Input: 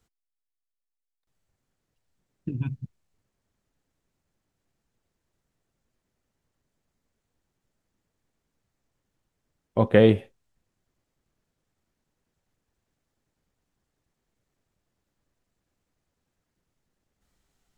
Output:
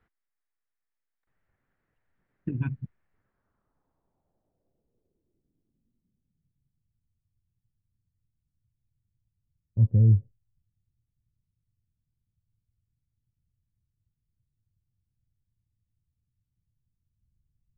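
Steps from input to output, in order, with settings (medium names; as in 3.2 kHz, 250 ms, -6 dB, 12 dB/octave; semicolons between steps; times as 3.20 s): low-pass sweep 1.8 kHz -> 110 Hz, 3.10–6.93 s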